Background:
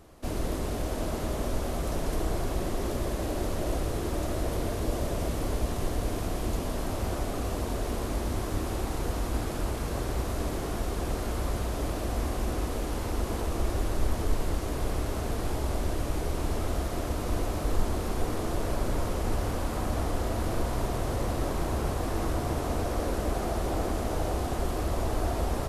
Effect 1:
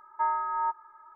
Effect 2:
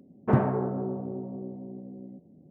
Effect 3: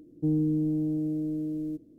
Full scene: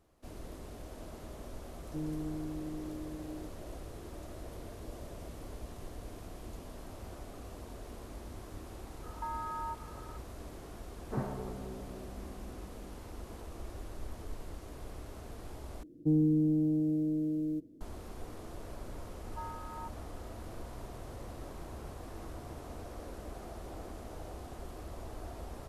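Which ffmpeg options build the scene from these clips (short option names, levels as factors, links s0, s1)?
-filter_complex "[3:a]asplit=2[s0][s1];[1:a]asplit=2[s2][s3];[0:a]volume=0.168[s4];[s2]acompressor=threshold=0.0158:ratio=6:attack=3.2:release=140:knee=1:detection=peak[s5];[s4]asplit=2[s6][s7];[s6]atrim=end=15.834[s8];[s1]atrim=end=1.98,asetpts=PTS-STARTPTS,volume=0.891[s9];[s7]atrim=start=17.806[s10];[s0]atrim=end=1.98,asetpts=PTS-STARTPTS,volume=0.237,afade=t=in:d=0.004:c=hsin,afade=t=out:st=1.976:d=0.004:c=hsin,adelay=1710[s11];[s5]atrim=end=1.15,asetpts=PTS-STARTPTS,volume=0.944,afade=t=in:d=0.004:c=hsin,afade=t=out:st=1.146:d=0.004:c=hsin,adelay=9030[s12];[2:a]atrim=end=2.5,asetpts=PTS-STARTPTS,volume=0.211,afade=t=in:d=0.004:c=hsin,afade=t=out:st=2.496:d=0.004:c=hsin,adelay=10840[s13];[s3]atrim=end=1.15,asetpts=PTS-STARTPTS,volume=0.15,afade=t=in:d=0.004:c=hsin,afade=t=out:st=1.146:d=0.004:c=hsin,adelay=19170[s14];[s8][s9]acrossfade=d=0.004:c1=hsin:c2=hsin[s15];[s15][s10]acrossfade=d=0.004:c1=hsin:c2=hsin[s16];[s16][s11][s12][s13][s14]amix=inputs=5:normalize=0"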